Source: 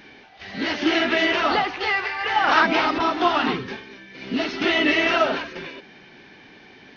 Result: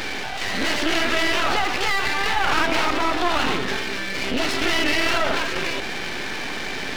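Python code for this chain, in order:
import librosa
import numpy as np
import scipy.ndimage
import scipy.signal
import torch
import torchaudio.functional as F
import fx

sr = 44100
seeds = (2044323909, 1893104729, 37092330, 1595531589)

y = fx.low_shelf(x, sr, hz=210.0, db=-11.0)
y = np.maximum(y, 0.0)
y = fx.env_flatten(y, sr, amount_pct=70)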